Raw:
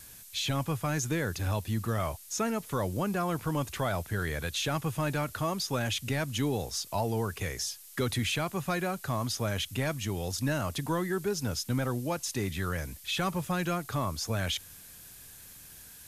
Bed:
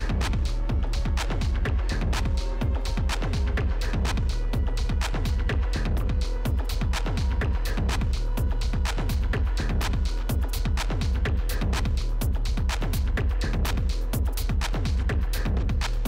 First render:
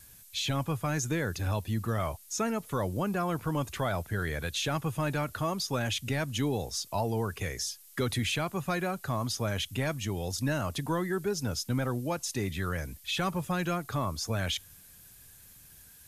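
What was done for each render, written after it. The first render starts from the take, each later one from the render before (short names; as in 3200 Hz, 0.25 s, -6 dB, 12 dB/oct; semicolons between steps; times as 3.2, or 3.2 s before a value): denoiser 6 dB, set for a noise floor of -50 dBFS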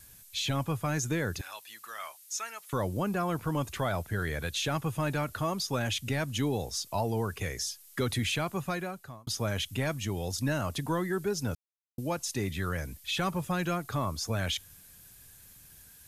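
1.41–2.73 HPF 1400 Hz; 8.57–9.27 fade out; 11.55–11.98 mute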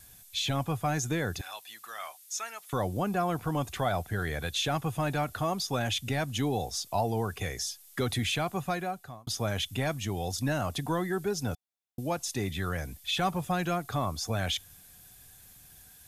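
small resonant body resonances 740/3500 Hz, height 10 dB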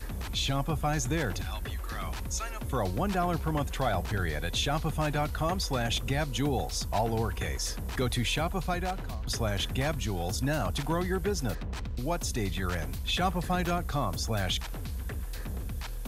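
add bed -11 dB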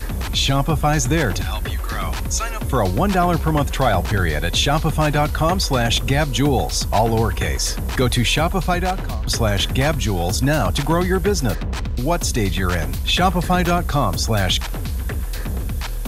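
gain +11.5 dB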